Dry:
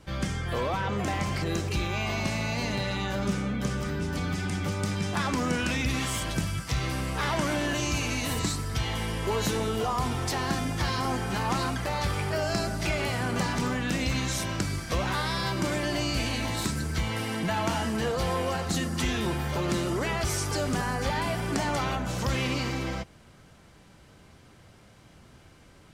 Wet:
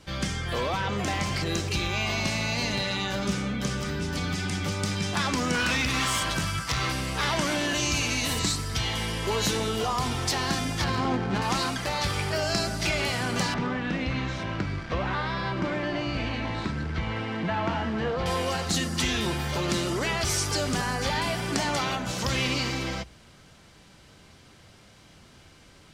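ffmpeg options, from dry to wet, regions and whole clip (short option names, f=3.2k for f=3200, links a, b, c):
-filter_complex "[0:a]asettb=1/sr,asplit=3[a][b][c];[a]atrim=end=5.544[d];[b]atrim=start=5.54:end=6.92,asetpts=PTS-STARTPTS,afade=t=in:d=0.004:c=qsin,afade=t=out:st=1.376:d=0.004:c=qsin,equalizer=f=1.2k:t=o:w=1.2:g=8,asoftclip=type=hard:threshold=-23dB[e];[c]atrim=start=6.916[f];[d][e]acrossfade=d=0.004:c1=hsin:c2=qsin[g];[g][f]acrossfade=d=0.004:c1=qsin:c2=hsin,asettb=1/sr,asplit=3[h][i][j];[h]atrim=end=10.844[k];[i]atrim=start=10.84:end=11.42,asetpts=PTS-STARTPTS,afade=t=in:d=0.004:c=qsin,afade=t=out:st=0.576:d=0.004:c=qsin,equalizer=f=230:w=0.6:g=5,adynamicsmooth=sensitivity=3:basefreq=1.1k[l];[j]atrim=start=11.416[m];[k][l]acrossfade=d=0.004:c1=hsin:c2=qsin[n];[n][m]acrossfade=d=0.004:c1=qsin:c2=hsin,asettb=1/sr,asplit=3[o][p][q];[o]atrim=end=13.544[r];[p]atrim=start=13.54:end=18.26,asetpts=PTS-STARTPTS,afade=t=in:d=0.004:c=qsin,afade=t=out:st=4.716:d=0.004:c=qsin,acrusher=bits=7:dc=4:mix=0:aa=0.000001,lowpass=2k[s];[q]atrim=start=18.256[t];[r][s]acrossfade=d=0.004:c1=hsin:c2=qsin[u];[u][t]acrossfade=d=0.004:c1=qsin:c2=hsin,equalizer=f=4.4k:t=o:w=2:g=6.5,bandreject=f=60:t=h:w=6,bandreject=f=120:t=h:w=6"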